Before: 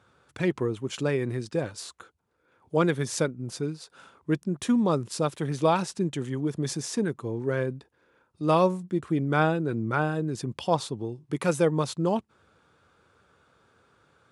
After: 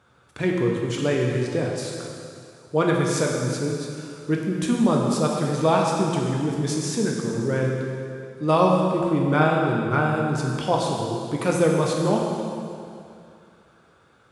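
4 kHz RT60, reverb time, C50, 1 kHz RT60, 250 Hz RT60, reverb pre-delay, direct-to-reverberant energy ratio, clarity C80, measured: 2.3 s, 2.5 s, 1.0 dB, 2.5 s, 2.5 s, 5 ms, −1.0 dB, 2.0 dB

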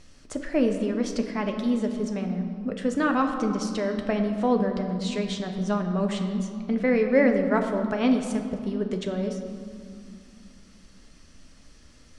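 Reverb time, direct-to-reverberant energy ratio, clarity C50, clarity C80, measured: 2.4 s, 4.0 dB, 6.5 dB, 7.5 dB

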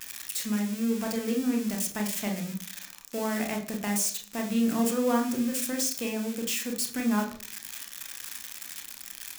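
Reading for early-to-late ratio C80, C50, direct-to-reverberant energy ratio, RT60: 15.0 dB, 10.0 dB, 2.5 dB, 0.40 s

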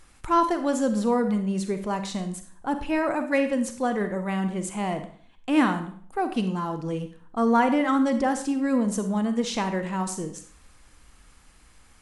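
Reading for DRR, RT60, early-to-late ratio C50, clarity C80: 8.0 dB, 0.50 s, 9.5 dB, 13.0 dB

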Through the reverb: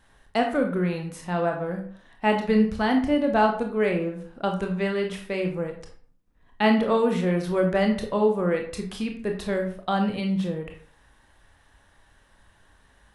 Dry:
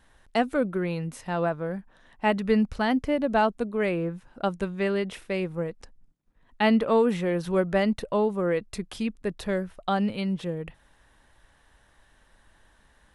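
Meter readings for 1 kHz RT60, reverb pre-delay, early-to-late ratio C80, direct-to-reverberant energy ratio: 0.50 s, 22 ms, 11.0 dB, 3.0 dB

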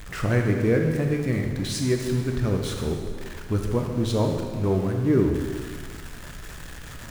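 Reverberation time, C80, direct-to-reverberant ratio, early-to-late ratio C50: 1.8 s, 5.0 dB, 2.0 dB, 3.5 dB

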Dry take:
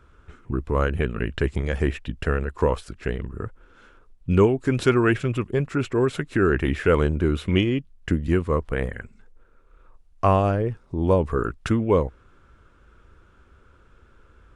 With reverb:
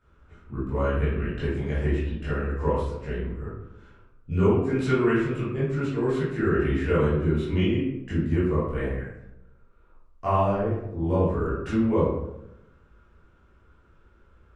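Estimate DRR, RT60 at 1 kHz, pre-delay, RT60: −12.0 dB, 0.80 s, 13 ms, 0.90 s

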